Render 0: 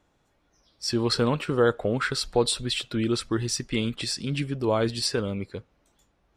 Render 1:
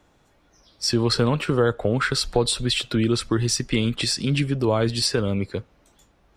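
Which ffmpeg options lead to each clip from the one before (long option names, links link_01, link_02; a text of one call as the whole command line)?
ffmpeg -i in.wav -filter_complex "[0:a]acrossover=split=130[link_01][link_02];[link_02]acompressor=threshold=-30dB:ratio=2[link_03];[link_01][link_03]amix=inputs=2:normalize=0,volume=8dB" out.wav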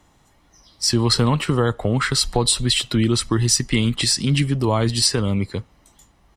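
ffmpeg -i in.wav -af "equalizer=frequency=10000:width_type=o:width=1.5:gain=6,aecho=1:1:1:0.38,volume=2dB" out.wav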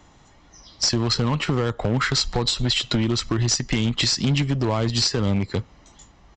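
ffmpeg -i in.wav -af "acompressor=threshold=-24dB:ratio=6,aeval=exprs='0.251*(cos(1*acos(clip(val(0)/0.251,-1,1)))-cos(1*PI/2))+0.0141*(cos(7*acos(clip(val(0)/0.251,-1,1)))-cos(7*PI/2))':channel_layout=same,aresample=16000,asoftclip=type=hard:threshold=-24dB,aresample=44100,volume=9dB" out.wav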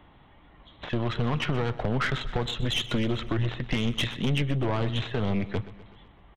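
ffmpeg -i in.wav -af "aresample=8000,aresample=44100,aeval=exprs='(tanh(11.2*val(0)+0.5)-tanh(0.5))/11.2':channel_layout=same,aecho=1:1:126|252|378|504|630:0.158|0.0856|0.0462|0.025|0.0135" out.wav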